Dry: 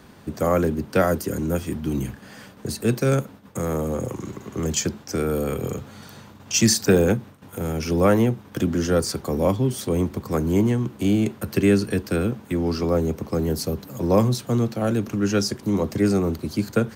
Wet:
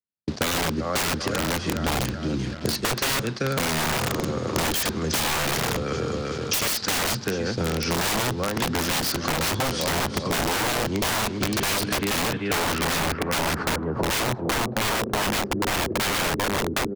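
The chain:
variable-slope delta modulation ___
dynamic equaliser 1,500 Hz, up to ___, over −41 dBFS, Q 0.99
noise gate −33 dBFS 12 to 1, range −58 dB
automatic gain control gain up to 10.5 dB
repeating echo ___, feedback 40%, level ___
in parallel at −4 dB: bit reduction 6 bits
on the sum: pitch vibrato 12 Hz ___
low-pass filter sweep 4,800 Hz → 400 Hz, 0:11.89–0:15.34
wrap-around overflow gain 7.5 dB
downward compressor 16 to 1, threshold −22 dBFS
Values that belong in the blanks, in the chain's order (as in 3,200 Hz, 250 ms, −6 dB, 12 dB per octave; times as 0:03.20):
64 kbit/s, +7 dB, 388 ms, −10 dB, 13 cents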